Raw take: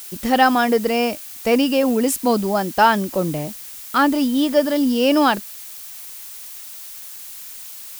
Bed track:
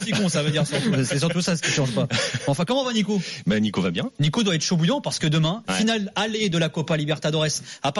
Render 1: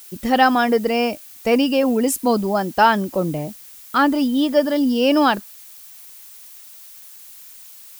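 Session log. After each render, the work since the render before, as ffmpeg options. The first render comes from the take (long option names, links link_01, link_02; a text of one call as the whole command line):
ffmpeg -i in.wav -af "afftdn=noise_reduction=7:noise_floor=-36" out.wav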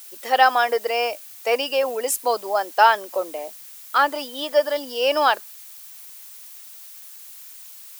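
ffmpeg -i in.wav -af "highpass=frequency=490:width=0.5412,highpass=frequency=490:width=1.3066" out.wav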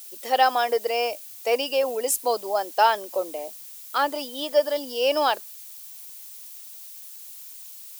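ffmpeg -i in.wav -af "equalizer=frequency=1500:width=0.88:gain=-7.5" out.wav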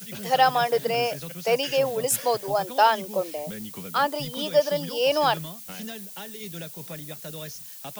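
ffmpeg -i in.wav -i bed.wav -filter_complex "[1:a]volume=-16.5dB[link_01];[0:a][link_01]amix=inputs=2:normalize=0" out.wav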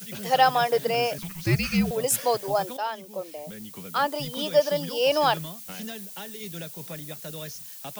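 ffmpeg -i in.wav -filter_complex "[0:a]asettb=1/sr,asplit=3[link_01][link_02][link_03];[link_01]atrim=end=1.184[link_04];[link_02]atrim=start=1.18:end=1.91,asetpts=PTS-STARTPTS,afade=type=in:duration=0.004:curve=qsin,afade=type=out:start_time=0.726:duration=0.004:curve=qsin,afreqshift=-340[link_05];[link_03]atrim=start=1.906[link_06];[link_04][link_05]acrossfade=duration=0.004:curve1=hsin:curve2=qsin[link_07];[link_07][link_06]acrossfade=duration=0.004:curve1=qsin:curve2=hsin,asplit=2[link_08][link_09];[link_08]atrim=end=2.77,asetpts=PTS-STARTPTS,afade=type=out:start_time=2.766:duration=0.004:curve=hsin:silence=0.223872[link_10];[link_09]atrim=start=2.77,asetpts=PTS-STARTPTS,afade=type=in:duration=1.56:silence=0.223872[link_11];[link_10][link_11]concat=n=2:v=0:a=1" out.wav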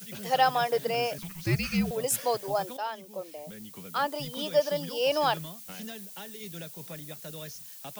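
ffmpeg -i in.wav -af "volume=-4dB" out.wav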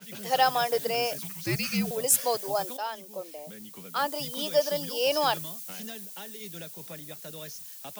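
ffmpeg -i in.wav -af "highpass=160,adynamicequalizer=threshold=0.00501:dfrequency=4200:dqfactor=0.7:tfrequency=4200:tqfactor=0.7:attack=5:release=100:ratio=0.375:range=3.5:mode=boostabove:tftype=highshelf" out.wav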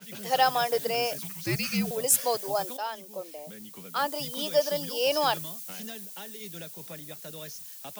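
ffmpeg -i in.wav -af anull out.wav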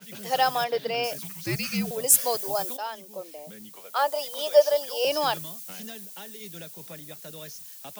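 ffmpeg -i in.wav -filter_complex "[0:a]asettb=1/sr,asplit=3[link_01][link_02][link_03];[link_01]atrim=end=0.644[link_04];[link_02]atrim=start=0.64:end=1.04,asetpts=PTS-STARTPTS,afade=type=in:duration=0.004:curve=qsin,afade=type=out:start_time=0.396:duration=0.004:curve=qsin,highshelf=frequency=5500:width_type=q:width=1.5:gain=-12[link_05];[link_03]atrim=start=1.036[link_06];[link_04][link_05]acrossfade=duration=0.004:curve1=hsin:curve2=qsin[link_07];[link_07][link_06]acrossfade=duration=0.004:curve1=qsin:curve2=hsin,asettb=1/sr,asplit=3[link_08][link_09][link_10];[link_08]atrim=end=2.094[link_11];[link_09]atrim=start=2.09:end=2.76,asetpts=PTS-STARTPTS,afade=type=in:duration=0.004:curve=qsin,afade=type=out:start_time=0.666:duration=0.004:curve=qsin,highshelf=frequency=6200:gain=6[link_12];[link_10]atrim=start=2.756[link_13];[link_11][link_12]acrossfade=duration=0.004:curve1=hsin:curve2=qsin[link_14];[link_14][link_13]acrossfade=duration=0.004:curve1=qsin:curve2=hsin,asettb=1/sr,asplit=3[link_15][link_16][link_17];[link_15]atrim=end=3.764[link_18];[link_16]atrim=start=3.76:end=5.05,asetpts=PTS-STARTPTS,afade=type=in:duration=0.004:curve=qsin,afade=type=out:start_time=1.286:duration=0.004:curve=qsin,highpass=frequency=620:width_type=q:width=2.5[link_19];[link_17]atrim=start=5.046[link_20];[link_18][link_19]acrossfade=duration=0.004:curve1=hsin:curve2=qsin[link_21];[link_21][link_20]acrossfade=duration=0.004:curve1=qsin:curve2=hsin" out.wav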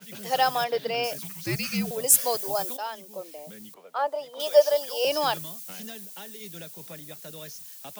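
ffmpeg -i in.wav -filter_complex "[0:a]asettb=1/sr,asplit=3[link_01][link_02][link_03];[link_01]atrim=end=3.744[link_04];[link_02]atrim=start=3.74:end=4.4,asetpts=PTS-STARTPTS,afade=type=in:duration=0.004:curve=qsin,afade=type=out:start_time=0.656:duration=0.004:curve=qsin,lowpass=frequency=1000:poles=1[link_05];[link_03]atrim=start=4.396[link_06];[link_04][link_05]acrossfade=duration=0.004:curve1=hsin:curve2=qsin[link_07];[link_07][link_06]acrossfade=duration=0.004:curve1=qsin:curve2=hsin" out.wav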